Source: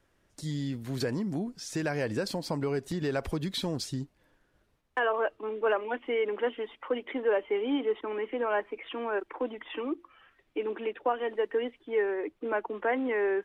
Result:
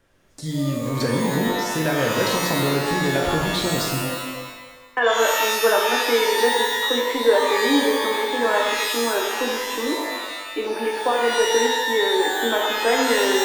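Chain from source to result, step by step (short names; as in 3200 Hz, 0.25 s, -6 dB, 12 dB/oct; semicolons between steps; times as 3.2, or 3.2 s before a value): shimmer reverb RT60 1.2 s, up +12 st, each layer -2 dB, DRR 0 dB; gain +5.5 dB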